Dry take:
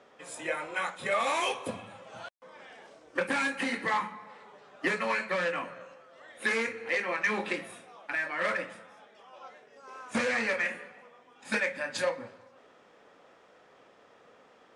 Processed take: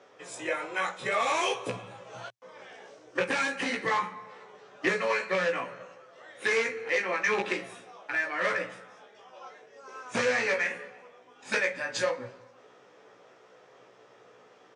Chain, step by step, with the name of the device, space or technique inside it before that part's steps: car door speaker with a rattle (rattling part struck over -37 dBFS, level -22 dBFS; speaker cabinet 110–8700 Hz, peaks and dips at 120 Hz +7 dB, 230 Hz -5 dB, 410 Hz +5 dB, 5900 Hz +5 dB); doubler 16 ms -4 dB

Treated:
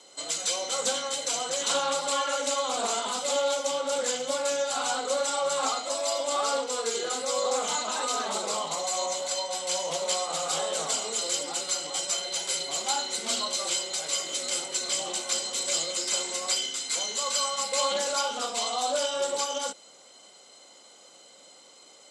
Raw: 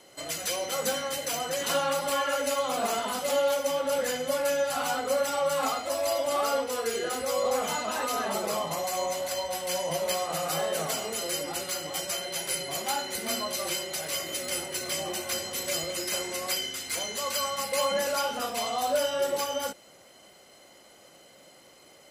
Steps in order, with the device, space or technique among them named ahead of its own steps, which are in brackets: full-range speaker at full volume (Doppler distortion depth 0.15 ms; speaker cabinet 290–8700 Hz, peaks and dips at 350 Hz -5 dB, 630 Hz -5 dB, 1800 Hz -8 dB, 2600 Hz -3 dB, 3800 Hz +7 dB, 7500 Hz +10 dB); gain +1.5 dB

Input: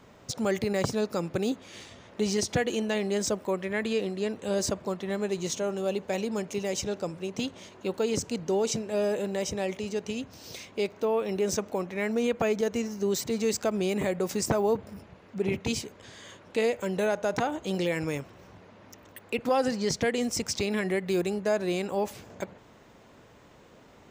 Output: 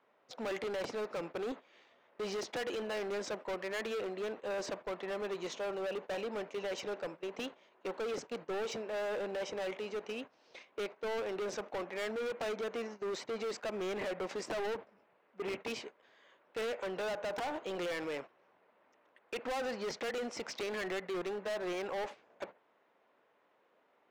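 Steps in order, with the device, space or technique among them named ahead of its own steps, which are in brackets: walkie-talkie (BPF 480–2500 Hz; hard clip -35.5 dBFS, distortion -5 dB; gate -46 dBFS, range -14 dB); gain +1 dB

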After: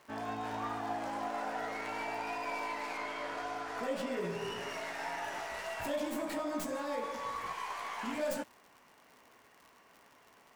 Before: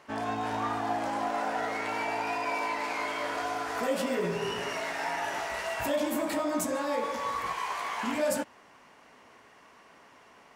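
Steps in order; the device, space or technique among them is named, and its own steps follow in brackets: record under a worn stylus (tracing distortion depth 0.1 ms; crackle 100/s -41 dBFS; white noise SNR 40 dB); 2.97–4.17 high shelf 8300 Hz -8 dB; gain -6.5 dB

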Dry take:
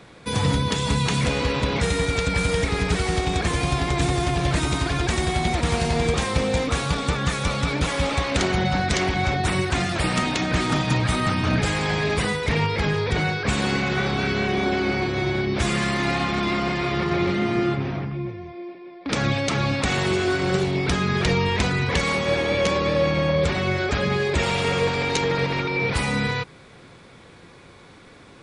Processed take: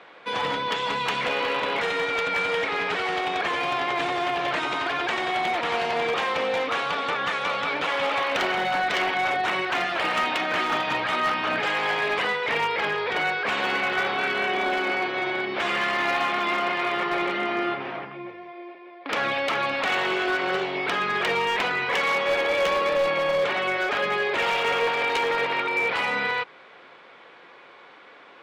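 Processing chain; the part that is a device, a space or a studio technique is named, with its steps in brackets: megaphone (BPF 590–2500 Hz; bell 3000 Hz +5 dB 0.24 oct; hard clip -21.5 dBFS, distortion -21 dB); gain +3.5 dB

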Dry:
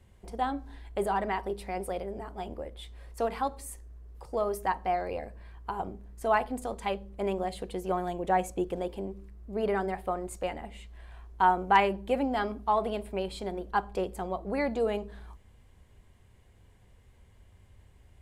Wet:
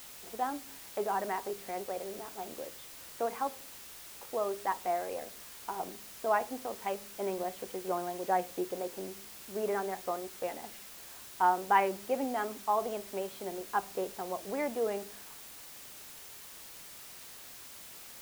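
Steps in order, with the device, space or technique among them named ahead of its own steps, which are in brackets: wax cylinder (BPF 260–2200 Hz; wow and flutter; white noise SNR 13 dB); gain -3 dB

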